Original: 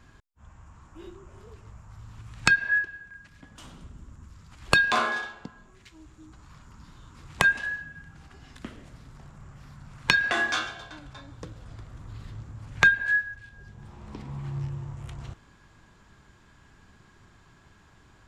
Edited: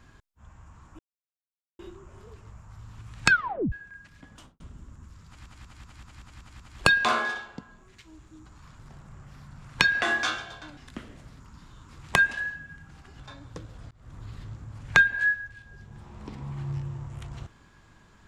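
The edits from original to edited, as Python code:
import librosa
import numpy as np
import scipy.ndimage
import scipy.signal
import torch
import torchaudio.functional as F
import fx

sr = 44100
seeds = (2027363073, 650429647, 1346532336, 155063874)

y = fx.studio_fade_out(x, sr, start_s=3.53, length_s=0.27)
y = fx.edit(y, sr, fx.insert_silence(at_s=0.99, length_s=0.8),
    fx.tape_stop(start_s=2.5, length_s=0.42),
    fx.stutter(start_s=4.47, slice_s=0.19, count=8),
    fx.swap(start_s=6.66, length_s=1.79, other_s=9.08, other_length_s=1.98),
    fx.fade_in_span(start_s=11.78, length_s=0.25), tone=tone)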